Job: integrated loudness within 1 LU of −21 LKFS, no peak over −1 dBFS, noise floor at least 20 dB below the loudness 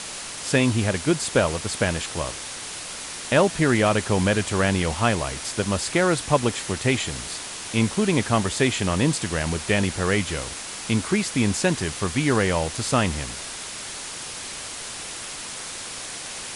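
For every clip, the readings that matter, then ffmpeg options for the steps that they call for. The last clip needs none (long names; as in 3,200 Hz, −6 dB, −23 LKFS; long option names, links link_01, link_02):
background noise floor −35 dBFS; target noise floor −44 dBFS; integrated loudness −24.0 LKFS; sample peak −6.5 dBFS; target loudness −21.0 LKFS
→ -af "afftdn=noise_reduction=9:noise_floor=-35"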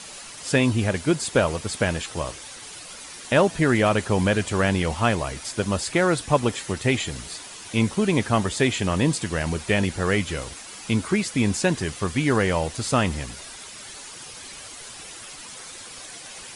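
background noise floor −41 dBFS; target noise floor −44 dBFS
→ -af "afftdn=noise_reduction=6:noise_floor=-41"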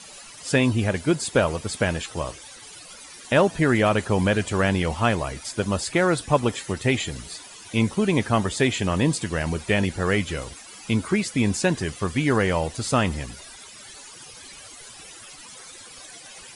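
background noise floor −44 dBFS; integrated loudness −23.5 LKFS; sample peak −6.5 dBFS; target loudness −21.0 LKFS
→ -af "volume=2.5dB"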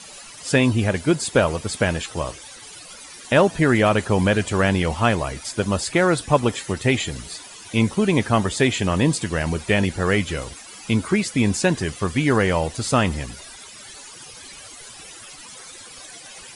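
integrated loudness −21.0 LKFS; sample peak −4.0 dBFS; background noise floor −41 dBFS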